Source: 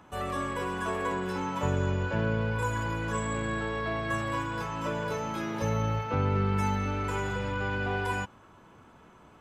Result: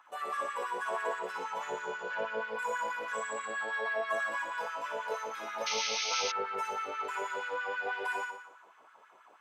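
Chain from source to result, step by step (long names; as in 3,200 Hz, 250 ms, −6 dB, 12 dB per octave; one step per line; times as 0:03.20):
flutter between parallel walls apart 10.1 metres, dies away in 0.78 s
sound drawn into the spectrogram noise, 0:05.66–0:06.32, 2,000–6,500 Hz −28 dBFS
auto-filter high-pass sine 6.2 Hz 520–1,600 Hz
level −7 dB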